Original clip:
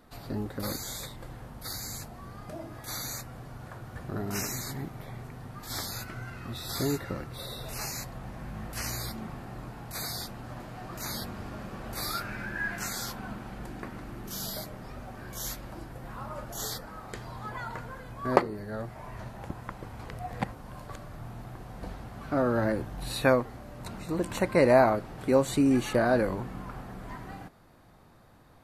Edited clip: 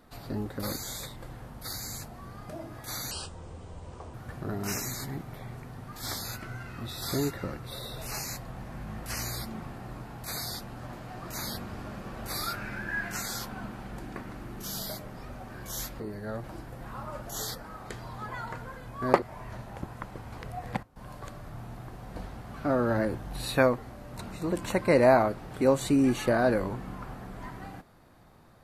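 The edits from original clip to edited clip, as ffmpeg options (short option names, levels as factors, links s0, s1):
-filter_complex "[0:a]asplit=8[s0][s1][s2][s3][s4][s5][s6][s7];[s0]atrim=end=3.114[s8];[s1]atrim=start=3.11:end=3.81,asetpts=PTS-STARTPTS,asetrate=29988,aresample=44100,atrim=end_sample=45397,asetpts=PTS-STARTPTS[s9];[s2]atrim=start=3.806:end=15.672[s10];[s3]atrim=start=18.448:end=18.892[s11];[s4]atrim=start=15.668:end=18.452[s12];[s5]atrim=start=18.888:end=20.5,asetpts=PTS-STARTPTS,afade=t=out:st=1.262:d=0.35:c=log:silence=0.141254[s13];[s6]atrim=start=20.5:end=20.63,asetpts=PTS-STARTPTS,volume=0.141[s14];[s7]atrim=start=20.63,asetpts=PTS-STARTPTS,afade=t=in:d=0.35:c=log:silence=0.141254[s15];[s8][s9]acrossfade=d=0.004:c1=hsin:c2=hsin[s16];[s16][s10]acrossfade=d=0.004:c1=hsin:c2=hsin[s17];[s17][s11]acrossfade=d=0.004:c1=hsin:c2=hsin[s18];[s18][s12]acrossfade=d=0.004:c1=hsin:c2=hsin[s19];[s13][s14][s15]concat=n=3:v=0:a=1[s20];[s19][s20]acrossfade=d=0.004:c1=hsin:c2=hsin"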